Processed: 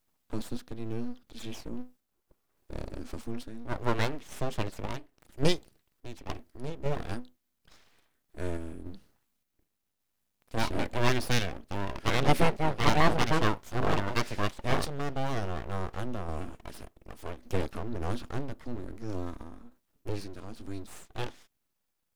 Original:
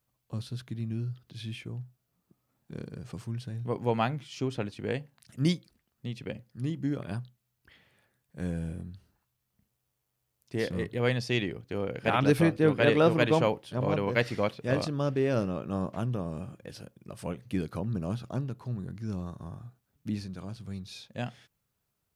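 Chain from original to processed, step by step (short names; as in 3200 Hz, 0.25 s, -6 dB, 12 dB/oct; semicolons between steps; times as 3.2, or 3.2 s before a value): full-wave rectifier; random-step tremolo; gain +4.5 dB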